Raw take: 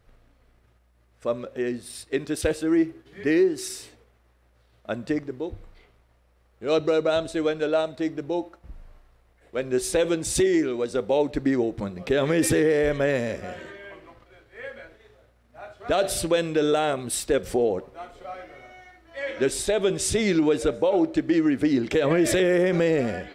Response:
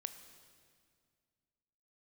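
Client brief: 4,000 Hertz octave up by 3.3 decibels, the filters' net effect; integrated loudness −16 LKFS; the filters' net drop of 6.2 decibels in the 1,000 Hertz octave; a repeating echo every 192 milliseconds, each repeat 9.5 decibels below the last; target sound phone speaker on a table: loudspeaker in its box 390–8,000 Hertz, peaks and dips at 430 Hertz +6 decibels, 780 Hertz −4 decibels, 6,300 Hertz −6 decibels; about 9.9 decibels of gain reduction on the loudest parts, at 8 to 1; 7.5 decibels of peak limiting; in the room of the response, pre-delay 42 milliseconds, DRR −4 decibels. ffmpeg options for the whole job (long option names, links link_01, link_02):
-filter_complex "[0:a]equalizer=frequency=1000:width_type=o:gain=-7,equalizer=frequency=4000:width_type=o:gain=5,acompressor=threshold=-28dB:ratio=8,alimiter=level_in=1dB:limit=-24dB:level=0:latency=1,volume=-1dB,aecho=1:1:192|384|576|768:0.335|0.111|0.0365|0.012,asplit=2[link_01][link_02];[1:a]atrim=start_sample=2205,adelay=42[link_03];[link_02][link_03]afir=irnorm=-1:irlink=0,volume=7dB[link_04];[link_01][link_04]amix=inputs=2:normalize=0,highpass=frequency=390:width=0.5412,highpass=frequency=390:width=1.3066,equalizer=frequency=430:width_type=q:width=4:gain=6,equalizer=frequency=780:width_type=q:width=4:gain=-4,equalizer=frequency=6300:width_type=q:width=4:gain=-6,lowpass=frequency=8000:width=0.5412,lowpass=frequency=8000:width=1.3066,volume=13.5dB"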